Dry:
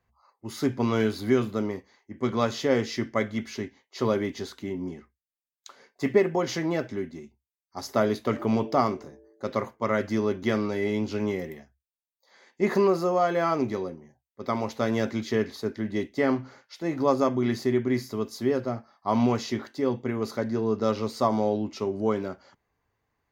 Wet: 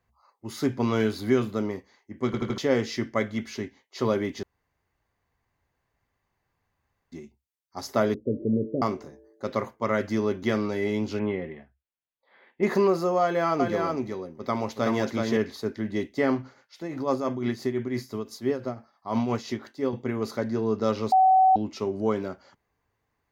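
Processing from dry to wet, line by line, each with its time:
2.26 stutter in place 0.08 s, 4 plays
4.43–7.12 room tone
8.14–8.82 steep low-pass 540 Hz 72 dB/oct
11.19–12.63 steep low-pass 3300 Hz
13.22–15.37 echo 0.375 s -3.5 dB
16.42–19.93 tremolo triangle 5.9 Hz, depth 65%
21.12–21.56 bleep 756 Hz -14.5 dBFS

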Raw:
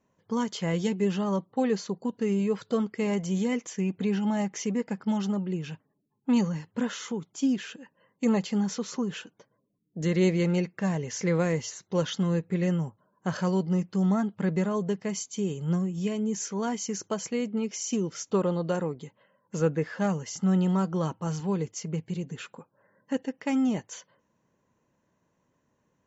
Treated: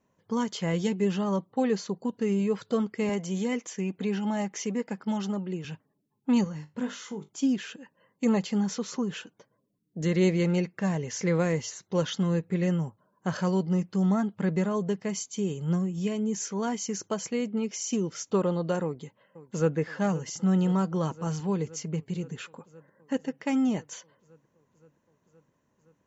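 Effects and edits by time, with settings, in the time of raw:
3.09–5.65 Bessel high-pass 190 Hz
6.44–7.29 resonator 50 Hz, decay 0.21 s, mix 80%
18.83–19.77 echo throw 0.52 s, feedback 80%, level -17 dB

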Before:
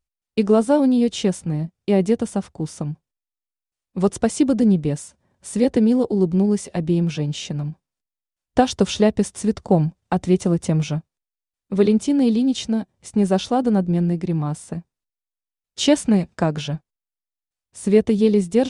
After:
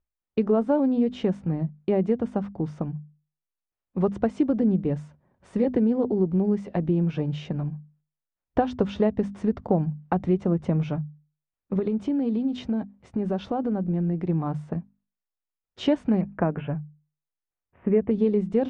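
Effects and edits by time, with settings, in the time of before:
11.79–14.26 compressor 4:1, threshold -21 dBFS
16.21–18.11 steep low-pass 2700 Hz 48 dB/oct
whole clip: LPF 1700 Hz 12 dB/oct; notches 50/100/150/200/250 Hz; compressor 2:1, threshold -22 dBFS

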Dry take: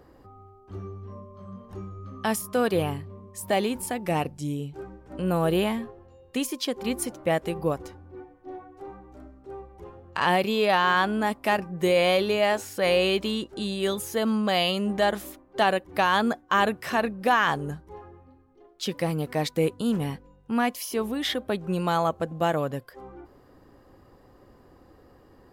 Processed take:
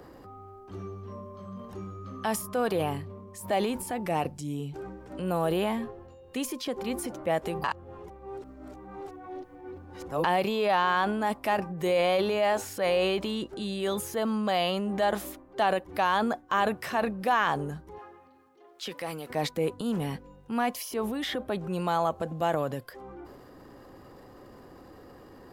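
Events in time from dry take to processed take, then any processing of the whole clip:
7.64–10.24 reverse
17.98–19.3 HPF 920 Hz 6 dB/oct
whole clip: dynamic EQ 800 Hz, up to +6 dB, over -34 dBFS, Q 0.91; transient shaper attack -3 dB, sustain +6 dB; three-band squash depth 40%; gain -6 dB

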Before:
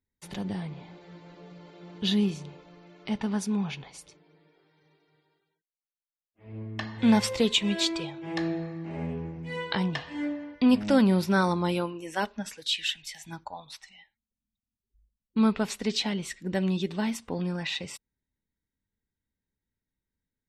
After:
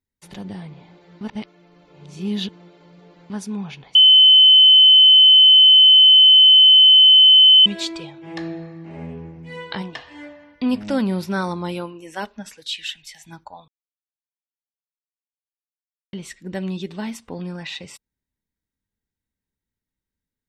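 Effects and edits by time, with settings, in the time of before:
1.21–3.3 reverse
3.95–7.66 bleep 3050 Hz -6.5 dBFS
9.81–10.57 bell 120 Hz -> 410 Hz -14.5 dB
13.68–16.13 mute

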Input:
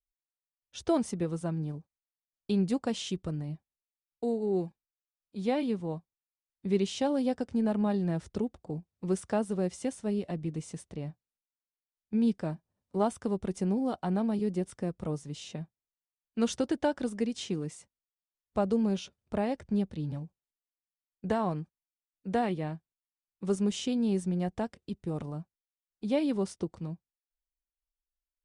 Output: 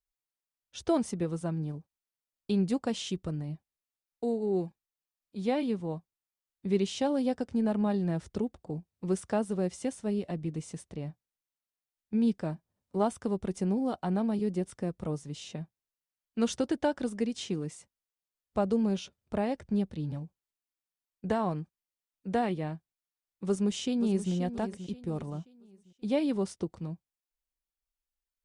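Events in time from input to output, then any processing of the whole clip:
23.47–24.33 echo throw 0.53 s, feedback 35%, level -11 dB

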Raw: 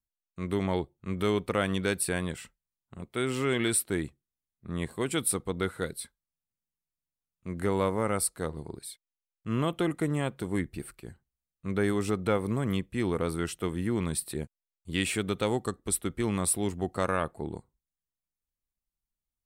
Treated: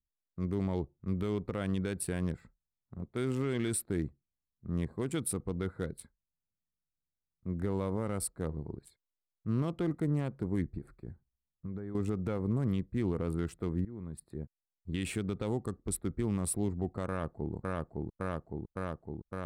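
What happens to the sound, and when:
10.78–11.95 compressor, threshold -36 dBFS
13.85–15.01 fade in, from -19 dB
17.07–17.53 echo throw 0.56 s, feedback 80%, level -1 dB
whole clip: Wiener smoothing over 15 samples; low shelf 350 Hz +10 dB; limiter -15 dBFS; gain -7 dB

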